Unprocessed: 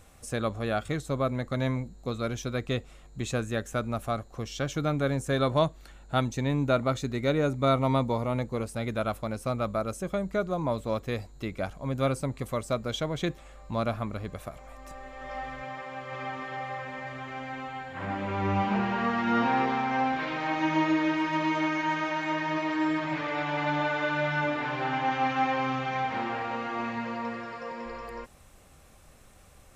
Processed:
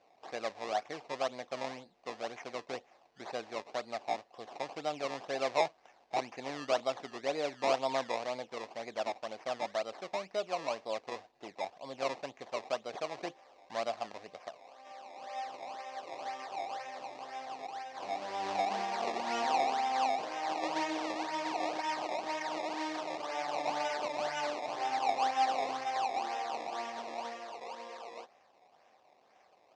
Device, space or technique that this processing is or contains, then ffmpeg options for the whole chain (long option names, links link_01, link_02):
circuit-bent sampling toy: -af "acrusher=samples=20:mix=1:aa=0.000001:lfo=1:lforange=20:lforate=2,highpass=490,equalizer=frequency=730:width_type=q:width=4:gain=8,equalizer=frequency=1400:width_type=q:width=4:gain=-8,equalizer=frequency=3200:width_type=q:width=4:gain=-4,lowpass=frequency=5800:width=0.5412,lowpass=frequency=5800:width=1.3066,volume=-5.5dB"